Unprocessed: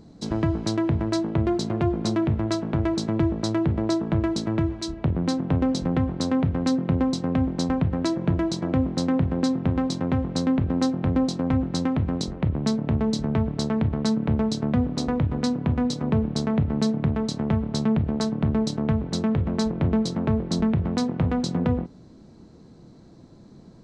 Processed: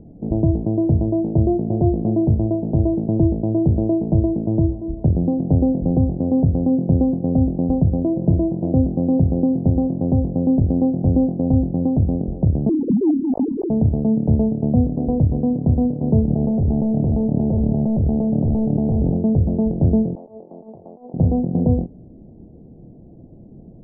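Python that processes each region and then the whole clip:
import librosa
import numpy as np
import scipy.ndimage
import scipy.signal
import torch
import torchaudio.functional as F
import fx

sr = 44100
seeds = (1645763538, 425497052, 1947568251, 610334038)

y = fx.chain(x, sr, fx.sine_speech(),
    fx.brickwall_lowpass(high_hz=1200.0), at=(12.69, 13.7))
y = fx.chain(y, sr, fx.overload_stage(gain_db=23.0),
    fx.env_flatten(amount_pct=100), at=(16.28, 19.17))
y = fx.chain(y, sr, fx.highpass(hz=850.0, slope=12),
    fx.air_absorb(metres=440.0),
    fx.over_compress(threshold_db=-41.0, ratio=-0.5), at=(20.15, 21.14))
y = scipy.signal.sosfilt(scipy.signal.butter(8, 750.0, 'lowpass', fs=sr, output='sos'), y)
y = fx.low_shelf(y, sr, hz=87.0, db=7.0)
y = y * librosa.db_to_amplitude(4.5)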